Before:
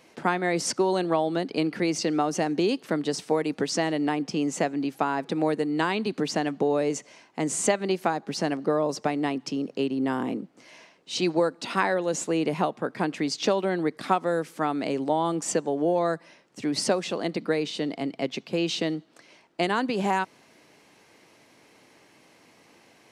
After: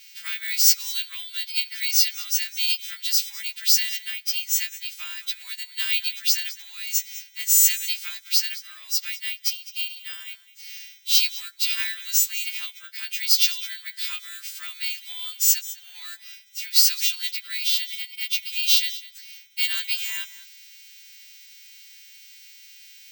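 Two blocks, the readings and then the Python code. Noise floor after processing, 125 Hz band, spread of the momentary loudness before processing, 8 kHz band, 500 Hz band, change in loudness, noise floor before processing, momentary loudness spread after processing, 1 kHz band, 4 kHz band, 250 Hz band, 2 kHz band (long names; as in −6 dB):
−49 dBFS, below −40 dB, 5 LU, +11.0 dB, below −40 dB, +5.5 dB, −58 dBFS, 17 LU, −24.5 dB, +12.0 dB, below −40 dB, +1.5 dB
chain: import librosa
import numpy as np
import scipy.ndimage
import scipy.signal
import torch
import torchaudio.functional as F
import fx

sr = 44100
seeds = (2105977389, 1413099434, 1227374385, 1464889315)

p1 = fx.freq_snap(x, sr, grid_st=2)
p2 = scipy.signal.sosfilt(scipy.signal.butter(2, 6500.0, 'lowpass', fs=sr, output='sos'), p1)
p3 = p2 + 10.0 ** (-18.0 / 20.0) * np.pad(p2, (int(206 * sr / 1000.0), 0))[:len(p2)]
p4 = 10.0 ** (-24.5 / 20.0) * np.tanh(p3 / 10.0 ** (-24.5 / 20.0))
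p5 = p3 + (p4 * librosa.db_to_amplitude(-6.5))
p6 = scipy.signal.sosfilt(scipy.signal.cheby2(4, 80, 420.0, 'highpass', fs=sr, output='sos'), p5)
p7 = (np.kron(scipy.signal.resample_poly(p6, 1, 2), np.eye(2)[0]) * 2)[:len(p6)]
y = p7 * librosa.db_to_amplitude(3.5)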